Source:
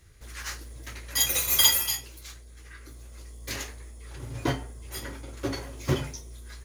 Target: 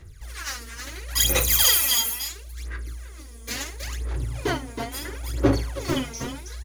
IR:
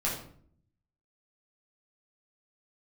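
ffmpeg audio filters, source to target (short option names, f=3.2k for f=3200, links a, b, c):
-af "asoftclip=type=hard:threshold=-18dB,aecho=1:1:54|321:0.398|0.531,aphaser=in_gain=1:out_gain=1:delay=4.4:decay=0.75:speed=0.73:type=sinusoidal"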